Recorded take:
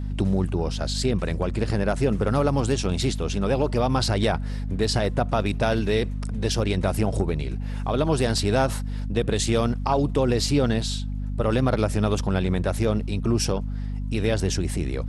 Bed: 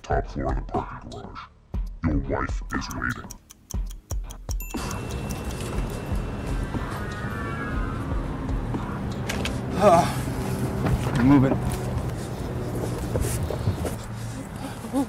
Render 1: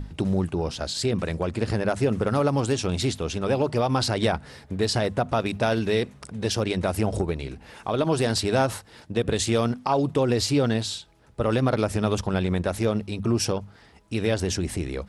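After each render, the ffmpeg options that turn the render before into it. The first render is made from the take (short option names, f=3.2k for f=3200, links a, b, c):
-af "bandreject=f=50:t=h:w=6,bandreject=f=100:t=h:w=6,bandreject=f=150:t=h:w=6,bandreject=f=200:t=h:w=6,bandreject=f=250:t=h:w=6"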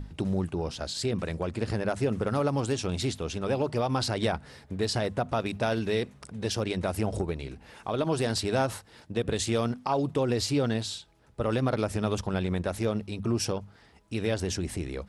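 -af "volume=-4.5dB"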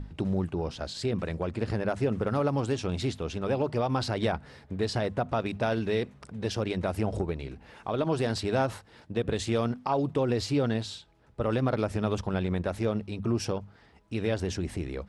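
-af "highshelf=f=6k:g=-12"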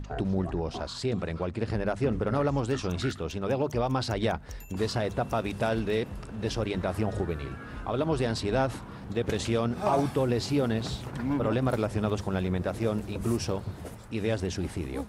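-filter_complex "[1:a]volume=-12.5dB[a];[0:a][a]amix=inputs=2:normalize=0"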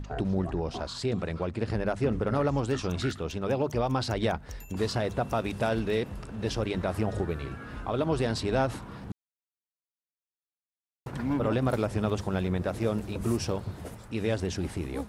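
-filter_complex "[0:a]asplit=3[a][b][c];[a]atrim=end=9.12,asetpts=PTS-STARTPTS,afade=t=out:st=9.116:d=0.004:c=hsin[d];[b]atrim=start=9.12:end=11.06,asetpts=PTS-STARTPTS,volume=0[e];[c]atrim=start=11.06,asetpts=PTS-STARTPTS,afade=t=in:d=0.004:c=hsin[f];[d][e][f]concat=n=3:v=0:a=1"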